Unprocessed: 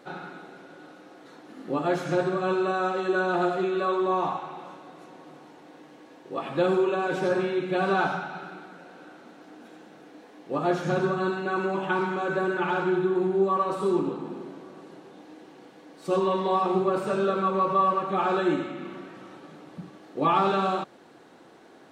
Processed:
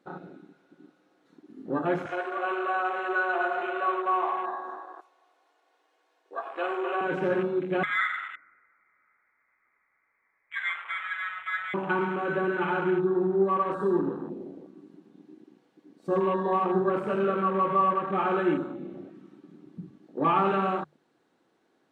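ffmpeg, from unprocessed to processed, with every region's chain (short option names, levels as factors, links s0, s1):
-filter_complex "[0:a]asettb=1/sr,asplit=3[s0][s1][s2];[s0]atrim=end=2.064[s3];[s1]atrim=start=2.06:end=7.01,asetpts=PTS-STARTPTS,afade=t=in:d=0.004:c=qsin,afade=t=out:st=4.946:d=0.004:c=qsin,highpass=f=520:w=0.5412,highpass=f=520:w=1.3066,aecho=1:1:2.8:0.45,atrim=end_sample=218295,asplit=2[s4][s5];[s5]adelay=247,lowpass=f=1800:p=1,volume=0.562,asplit=2[s6][s7];[s7]adelay=247,lowpass=f=1800:p=1,volume=0.49,asplit=2[s8][s9];[s9]adelay=247,lowpass=f=1800:p=1,volume=0.49,asplit=2[s10][s11];[s11]adelay=247,lowpass=f=1800:p=1,volume=0.49,asplit=2[s12][s13];[s13]adelay=247,lowpass=f=1800:p=1,volume=0.49,asplit=2[s14][s15];[s15]adelay=247,lowpass=f=1800:p=1,volume=0.49[s16];[s4][s6][s8][s10][s12][s14][s16]amix=inputs=7:normalize=0,atrim=end_sample=218295[s17];[s2]atrim=start=7.006[s18];[s3][s17]acrossfade=d=0.004:c1=hsin:c2=qsin[s19];[s19][s18]acrossfade=d=0.004:c1=qsin:c2=hsin,asettb=1/sr,asplit=3[s20][s21][s22];[s20]atrim=end=7.834[s23];[s21]atrim=start=7.83:end=11.74,asetpts=PTS-STARTPTS,afade=t=in:d=0.004:c=qsin,afade=t=out:st=3.906:d=0.004:c=qsin,highpass=f=700:w=0.5412,highpass=f=700:w=1.3066,lowpass=f=2400:t=q:w=0.5098,lowpass=f=2400:t=q:w=0.6013,lowpass=f=2400:t=q:w=0.9,lowpass=f=2400:t=q:w=2.563,afreqshift=-2800[s24];[s22]atrim=start=11.736[s25];[s23][s24]acrossfade=d=0.004:c1=hsin:c2=qsin[s26];[s26][s25]acrossfade=d=0.004:c1=qsin:c2=hsin,afwtdn=0.0178,equalizer=f=680:w=1.5:g=-3,bandreject=f=50:t=h:w=6,bandreject=f=100:t=h:w=6,bandreject=f=150:t=h:w=6"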